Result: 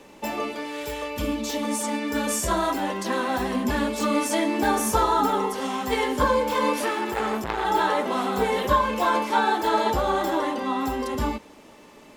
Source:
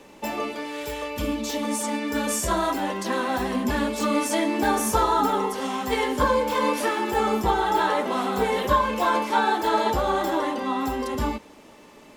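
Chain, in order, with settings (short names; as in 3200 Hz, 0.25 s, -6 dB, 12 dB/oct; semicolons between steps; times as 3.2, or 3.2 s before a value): 6.84–7.65 core saturation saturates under 1800 Hz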